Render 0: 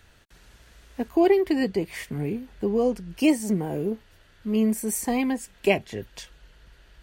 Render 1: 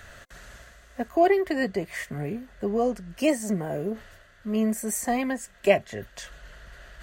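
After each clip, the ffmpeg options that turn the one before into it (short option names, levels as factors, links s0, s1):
-af "superequalizer=6b=0.708:8b=2.51:10b=2:11b=2.24:15b=1.58,areverse,acompressor=mode=upward:threshold=0.02:ratio=2.5,areverse,volume=0.75"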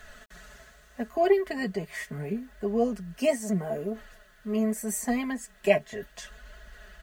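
-af "aecho=1:1:4.7:0.64,flanger=delay=2.7:depth=5.2:regen=48:speed=0.76:shape=triangular,acrusher=bits=10:mix=0:aa=0.000001"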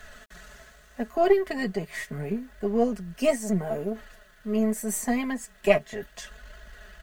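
-af "aeval=exprs='if(lt(val(0),0),0.708*val(0),val(0))':c=same,volume=1.41"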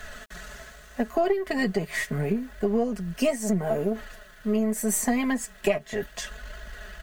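-af "acompressor=threshold=0.0501:ratio=8,volume=2"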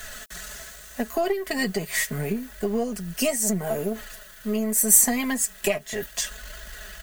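-af "crystalizer=i=3.5:c=0,volume=0.841"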